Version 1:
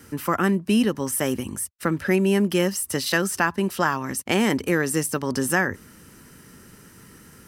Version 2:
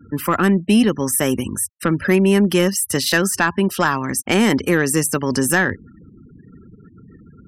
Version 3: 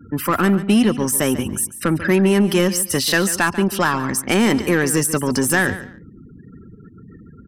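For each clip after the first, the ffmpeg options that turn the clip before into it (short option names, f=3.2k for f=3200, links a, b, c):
-af "afftfilt=real='re*gte(hypot(re,im),0.01)':imag='im*gte(hypot(re,im),0.01)':win_size=1024:overlap=0.75,asoftclip=type=tanh:threshold=-10.5dB,equalizer=f=720:t=o:w=2:g=-2,volume=7dB"
-filter_complex "[0:a]asplit=2[a][b];[b]asoftclip=type=tanh:threshold=-21.5dB,volume=-3dB[c];[a][c]amix=inputs=2:normalize=0,aecho=1:1:142|284:0.2|0.0439,volume=-2.5dB"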